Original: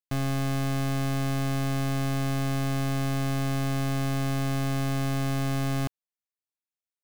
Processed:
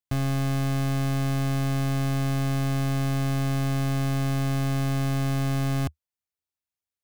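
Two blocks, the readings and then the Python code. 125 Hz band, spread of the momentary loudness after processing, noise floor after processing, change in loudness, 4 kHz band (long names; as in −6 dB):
+3.0 dB, 0 LU, below −85 dBFS, +2.0 dB, 0.0 dB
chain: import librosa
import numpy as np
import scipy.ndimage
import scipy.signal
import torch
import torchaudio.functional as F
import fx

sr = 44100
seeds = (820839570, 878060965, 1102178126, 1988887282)

y = fx.peak_eq(x, sr, hz=77.0, db=13.0, octaves=0.89)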